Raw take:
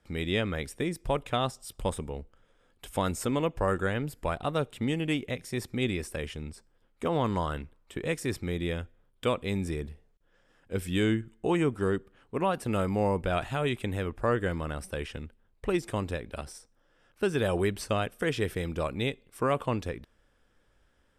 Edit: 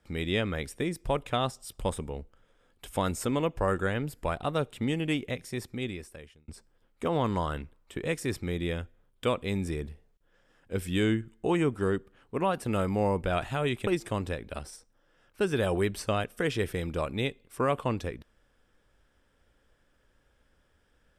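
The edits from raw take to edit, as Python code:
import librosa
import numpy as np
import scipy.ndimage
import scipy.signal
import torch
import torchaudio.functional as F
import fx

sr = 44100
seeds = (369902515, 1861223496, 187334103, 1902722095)

y = fx.edit(x, sr, fx.fade_out_span(start_s=5.32, length_s=1.16),
    fx.cut(start_s=13.87, length_s=1.82), tone=tone)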